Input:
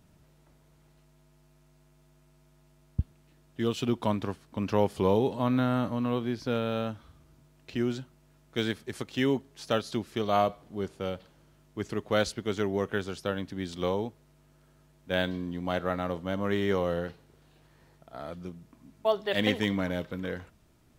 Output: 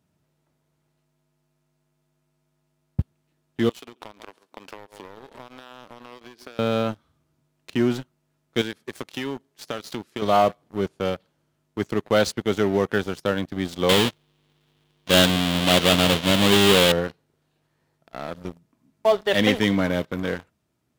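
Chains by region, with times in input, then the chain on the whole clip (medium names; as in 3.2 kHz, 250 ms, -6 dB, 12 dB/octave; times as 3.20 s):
3.69–6.59 s: high-pass 380 Hz + feedback delay 135 ms, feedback 16%, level -18 dB + compression 20:1, threshold -40 dBFS
8.61–10.22 s: bass shelf 140 Hz -9 dB + compression, threshold -33 dBFS
13.89–16.92 s: square wave that keeps the level + peaking EQ 3.3 kHz +14 dB 0.88 oct
whole clip: high-pass 93 Hz 12 dB/octave; waveshaping leveller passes 3; trim -3 dB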